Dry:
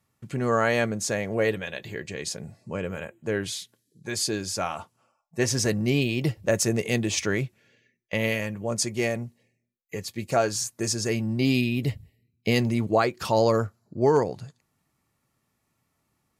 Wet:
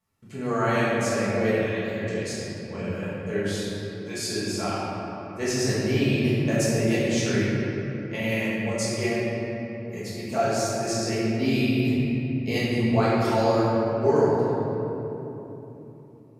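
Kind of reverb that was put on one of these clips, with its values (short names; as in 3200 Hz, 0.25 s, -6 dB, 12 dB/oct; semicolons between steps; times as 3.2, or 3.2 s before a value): shoebox room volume 190 m³, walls hard, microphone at 1.5 m; gain -9.5 dB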